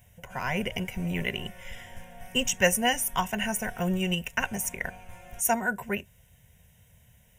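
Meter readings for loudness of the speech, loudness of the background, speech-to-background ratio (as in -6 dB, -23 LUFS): -28.5 LUFS, -48.5 LUFS, 20.0 dB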